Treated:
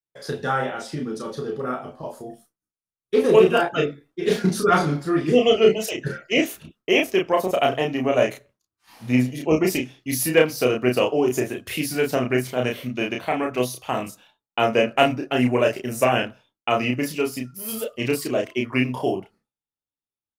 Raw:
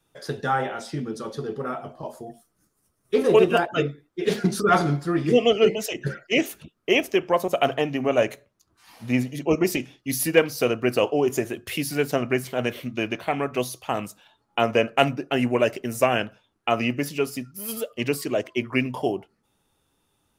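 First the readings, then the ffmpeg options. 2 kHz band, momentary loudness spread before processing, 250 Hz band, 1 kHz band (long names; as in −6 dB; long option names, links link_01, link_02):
+1.5 dB, 12 LU, +2.0 dB, +1.5 dB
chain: -filter_complex "[0:a]agate=range=-33dB:threshold=-49dB:ratio=3:detection=peak,asplit=2[link_01][link_02];[link_02]adelay=32,volume=-3dB[link_03];[link_01][link_03]amix=inputs=2:normalize=0"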